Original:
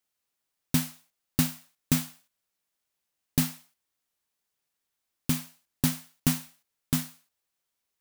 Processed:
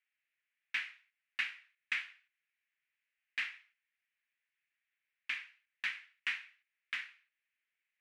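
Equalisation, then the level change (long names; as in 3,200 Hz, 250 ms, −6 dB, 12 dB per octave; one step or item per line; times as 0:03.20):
flat-topped band-pass 2,100 Hz, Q 2.2
+7.0 dB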